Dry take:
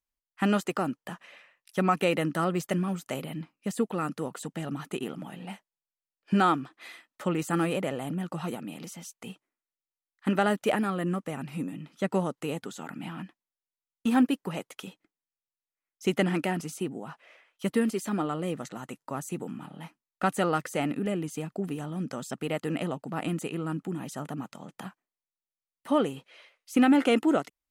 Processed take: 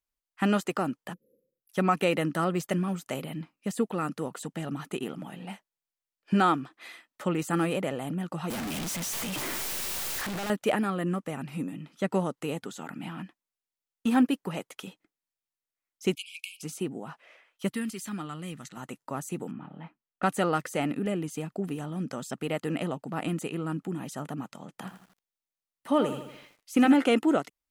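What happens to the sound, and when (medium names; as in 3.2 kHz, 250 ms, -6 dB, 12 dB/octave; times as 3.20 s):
1.13–1.70 s: spectral selection erased 540–11000 Hz
8.50–10.50 s: one-bit comparator
16.15–16.63 s: brick-wall FIR high-pass 2.2 kHz
17.69–18.77 s: peaking EQ 520 Hz -14.5 dB 2 oct
19.51–20.23 s: distance through air 410 m
24.70–26.94 s: bit-crushed delay 81 ms, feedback 55%, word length 9-bit, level -9.5 dB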